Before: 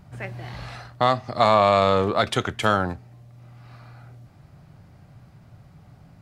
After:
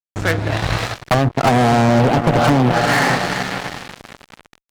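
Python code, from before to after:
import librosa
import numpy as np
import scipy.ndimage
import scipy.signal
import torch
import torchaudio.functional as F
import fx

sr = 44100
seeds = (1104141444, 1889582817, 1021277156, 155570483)

y = fx.speed_glide(x, sr, from_pct=78, to_pct=186)
y = fx.echo_diffused(y, sr, ms=472, feedback_pct=50, wet_db=-10.5)
y = fx.env_lowpass_down(y, sr, base_hz=400.0, full_db=-17.5)
y = fx.fuzz(y, sr, gain_db=30.0, gate_db=-38.0)
y = y * librosa.db_to_amplitude(4.0)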